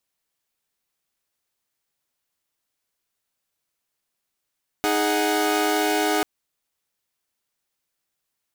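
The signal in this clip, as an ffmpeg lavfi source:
ffmpeg -f lavfi -i "aevalsrc='0.0841*((2*mod(311.13*t,1)-1)+(2*mod(415.3*t,1)-1)+(2*mod(739.99*t,1)-1))':duration=1.39:sample_rate=44100" out.wav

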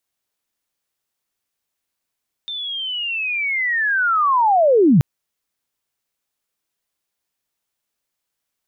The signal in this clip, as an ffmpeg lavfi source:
ffmpeg -f lavfi -i "aevalsrc='pow(10,(-25+16.5*t/2.53)/20)*sin(2*PI*(3600*t-3480*t*t/(2*2.53)))':duration=2.53:sample_rate=44100" out.wav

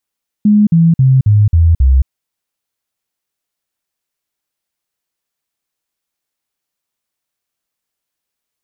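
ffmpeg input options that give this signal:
ffmpeg -f lavfi -i "aevalsrc='0.562*clip(min(mod(t,0.27),0.22-mod(t,0.27))/0.005,0,1)*sin(2*PI*209*pow(2,-floor(t/0.27)/3)*mod(t,0.27))':duration=1.62:sample_rate=44100" out.wav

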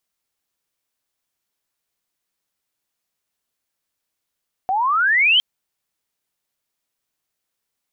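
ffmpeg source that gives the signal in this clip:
ffmpeg -f lavfi -i "aevalsrc='pow(10,(-17+6*t/0.71)/20)*sin(2*PI*730*0.71/log(3200/730)*(exp(log(3200/730)*t/0.71)-1))':duration=0.71:sample_rate=44100" out.wav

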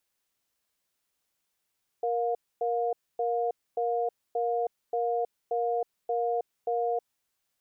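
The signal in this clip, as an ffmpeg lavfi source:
ffmpeg -f lavfi -i "aevalsrc='0.0398*(sin(2*PI*470*t)+sin(2*PI*709*t))*clip(min(mod(t,0.58),0.32-mod(t,0.58))/0.005,0,1)':duration=4.99:sample_rate=44100" out.wav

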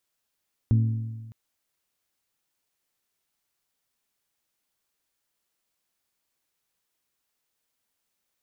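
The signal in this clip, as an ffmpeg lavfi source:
ffmpeg -f lavfi -i "aevalsrc='0.168*pow(10,-3*t/1.41)*sin(2*PI*112*t)+0.0596*pow(10,-3*t/1.145)*sin(2*PI*224*t)+0.0211*pow(10,-3*t/1.084)*sin(2*PI*268.8*t)+0.0075*pow(10,-3*t/1.014)*sin(2*PI*336*t)+0.00266*pow(10,-3*t/0.93)*sin(2*PI*448*t)':duration=0.61:sample_rate=44100" out.wav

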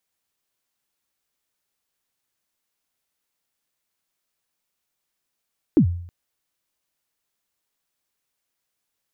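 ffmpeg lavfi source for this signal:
ffmpeg -f lavfi -i "aevalsrc='0.376*pow(10,-3*t/0.62)*sin(2*PI*(360*0.09/log(87/360)*(exp(log(87/360)*min(t,0.09)/0.09)-1)+87*max(t-0.09,0)))':duration=0.32:sample_rate=44100" out.wav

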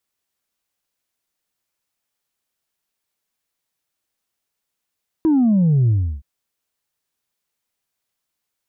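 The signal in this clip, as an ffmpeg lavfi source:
ffmpeg -f lavfi -i "aevalsrc='0.237*clip((0.97-t)/0.33,0,1)*tanh(1.12*sin(2*PI*330*0.97/log(65/330)*(exp(log(65/330)*t/0.97)-1)))/tanh(1.12)':duration=0.97:sample_rate=44100" out.wav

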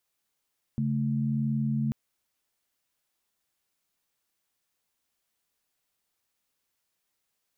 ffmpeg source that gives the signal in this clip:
ffmpeg -f lavfi -i "aevalsrc='0.0422*(sin(2*PI*138.59*t)+sin(2*PI*220*t))':duration=1.14:sample_rate=44100" out.wav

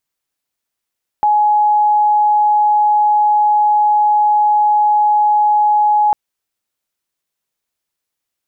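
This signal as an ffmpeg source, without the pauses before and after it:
ffmpeg -f lavfi -i "sine=frequency=840:duration=4.9:sample_rate=44100,volume=9.06dB" out.wav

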